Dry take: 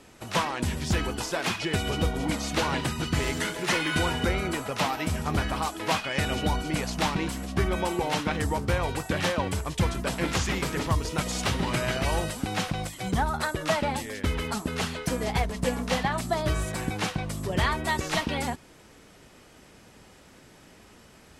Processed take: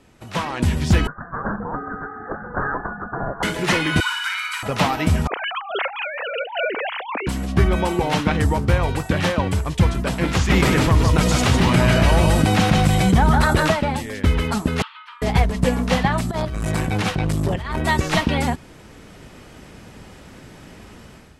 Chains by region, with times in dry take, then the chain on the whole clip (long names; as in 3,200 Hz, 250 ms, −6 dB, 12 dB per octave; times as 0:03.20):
0:01.07–0:03.43: Chebyshev high-pass filter 1,100 Hz, order 5 + voice inversion scrambler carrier 2,700 Hz
0:04.00–0:04.63: Butterworth high-pass 990 Hz 72 dB per octave + comb filter 1.3 ms, depth 44% + flutter between parallel walls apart 9.9 metres, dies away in 0.6 s
0:05.27–0:07.27: three sine waves on the formant tracks + high-pass filter 420 Hz + compressor whose output falls as the input rises −36 dBFS
0:10.50–0:13.72: single-tap delay 154 ms −4.5 dB + envelope flattener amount 70%
0:14.82–0:15.22: Chebyshev high-pass with heavy ripple 870 Hz, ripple 9 dB + high-frequency loss of the air 430 metres
0:16.31–0:17.82: compressor whose output falls as the input rises −29 dBFS, ratio −0.5 + saturating transformer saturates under 420 Hz
whole clip: bass and treble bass +5 dB, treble −4 dB; automatic gain control; level −2.5 dB